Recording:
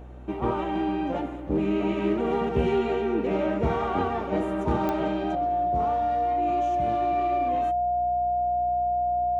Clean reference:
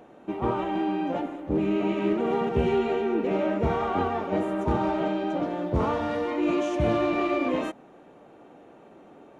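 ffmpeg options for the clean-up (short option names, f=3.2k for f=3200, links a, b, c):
-af "adeclick=t=4,bandreject=f=61.7:t=h:w=4,bandreject=f=123.4:t=h:w=4,bandreject=f=185.1:t=h:w=4,bandreject=f=246.8:t=h:w=4,bandreject=f=308.5:t=h:w=4,bandreject=f=370.2:t=h:w=4,bandreject=f=710:w=30,asetnsamples=n=441:p=0,asendcmd='5.35 volume volume 8.5dB',volume=0dB"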